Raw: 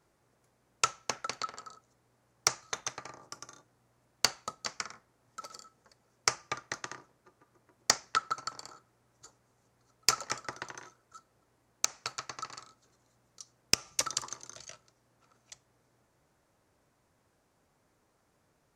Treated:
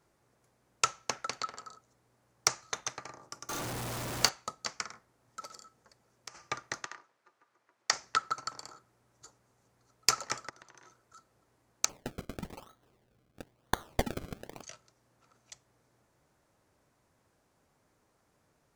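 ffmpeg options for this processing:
-filter_complex "[0:a]asettb=1/sr,asplit=3[s0][s1][s2];[s0]atrim=end=3.494[s3];[s1]atrim=start=3.49:end=4.29,asetpts=PTS-STARTPTS,afade=t=in:d=0.004:c=qsin,afade=t=out:st=0.796:d=0.004:c=qsin,aeval=exprs='val(0)+0.5*0.0266*sgn(val(0))':c=same[s4];[s2]atrim=start=4.286[s5];[s3][s4]acrossfade=d=0.004:c1=hsin:c2=qsin[s6];[s6][s5]acrossfade=d=0.004:c1=qsin:c2=hsin,asplit=3[s7][s8][s9];[s7]afade=t=out:st=5.5:d=0.02[s10];[s8]acompressor=threshold=0.00631:ratio=6:attack=3.2:release=140:knee=1:detection=peak,afade=t=in:st=5.5:d=0.02,afade=t=out:st=6.34:d=0.02[s11];[s9]afade=t=in:st=6.34:d=0.02[s12];[s10][s11][s12]amix=inputs=3:normalize=0,asplit=3[s13][s14][s15];[s13]afade=t=out:st=6.84:d=0.02[s16];[s14]bandpass=f=2100:t=q:w=0.53,afade=t=in:st=6.84:d=0.02,afade=t=out:st=7.92:d=0.02[s17];[s15]afade=t=in:st=7.92:d=0.02[s18];[s16][s17][s18]amix=inputs=3:normalize=0,asplit=3[s19][s20][s21];[s19]afade=t=out:st=10.48:d=0.02[s22];[s20]acompressor=threshold=0.00282:ratio=12:attack=3.2:release=140:knee=1:detection=peak,afade=t=in:st=10.48:d=0.02,afade=t=out:st=11.16:d=0.02[s23];[s21]afade=t=in:st=11.16:d=0.02[s24];[s22][s23][s24]amix=inputs=3:normalize=0,asplit=3[s25][s26][s27];[s25]afade=t=out:st=11.88:d=0.02[s28];[s26]acrusher=samples=33:mix=1:aa=0.000001:lfo=1:lforange=33:lforate=1,afade=t=in:st=11.88:d=0.02,afade=t=out:st=14.62:d=0.02[s29];[s27]afade=t=in:st=14.62:d=0.02[s30];[s28][s29][s30]amix=inputs=3:normalize=0"

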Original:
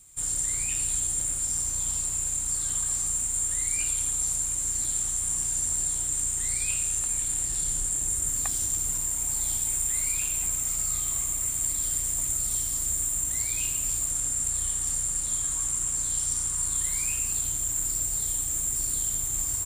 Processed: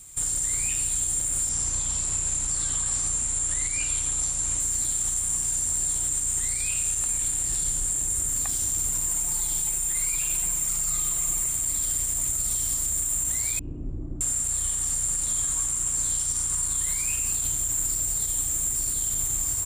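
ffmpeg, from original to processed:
-filter_complex "[0:a]asettb=1/sr,asplit=3[s0][s1][s2];[s0]atrim=end=1.494[s3];[s1]atrim=start=1.49:end=4.6,asetpts=PTS-STARTPTS,afade=t=in:d=0.004:c=qsin,afade=t=out:st=3.106:d=0.004:c=qsin,lowpass=7600[s4];[s2]atrim=start=4.596[s5];[s3][s4]acrossfade=d=0.004:c1=hsin:c2=qsin[s6];[s6][s5]acrossfade=d=0.004:c1=qsin:c2=hsin,asettb=1/sr,asplit=3[s7][s8][s9];[s7]atrim=end=9.074[s10];[s8]atrim=start=9.07:end=11.52,asetpts=PTS-STARTPTS,afade=t=in:d=0.004:c=qsin,afade=t=out:st=2.446:d=0.004:c=qsin,aecho=1:1:5.8:0.8,atrim=end_sample=108045[s11];[s9]atrim=start=11.516[s12];[s10][s11]acrossfade=d=0.004:c1=hsin:c2=qsin[s13];[s13][s12]acrossfade=d=0.004:c1=qsin:c2=hsin,asettb=1/sr,asplit=3[s14][s15][s16];[s14]atrim=end=13.594[s17];[s15]atrim=start=13.59:end=14.21,asetpts=PTS-STARTPTS,afade=t=in:d=0.004:c=qsin,afade=t=out:st=0.616:d=0.004:c=qsin,lowpass=f=320:t=q:w=2.4[s18];[s16]atrim=start=14.206[s19];[s17][s18]acrossfade=d=0.004:c1=hsin:c2=qsin[s20];[s20][s19]acrossfade=d=0.004:c1=qsin:c2=hsin,alimiter=level_in=1.06:limit=0.0631:level=0:latency=1:release=117,volume=0.944,volume=2.37"

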